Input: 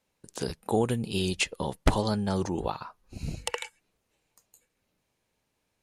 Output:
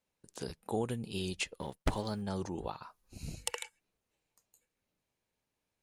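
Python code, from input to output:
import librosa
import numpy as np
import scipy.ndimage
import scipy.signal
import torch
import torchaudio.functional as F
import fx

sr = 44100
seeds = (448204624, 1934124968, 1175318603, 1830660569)

y = fx.law_mismatch(x, sr, coded='A', at=(1.58, 2.22))
y = fx.high_shelf(y, sr, hz=4900.0, db=11.0, at=(2.83, 3.63))
y = y * 10.0 ** (-8.5 / 20.0)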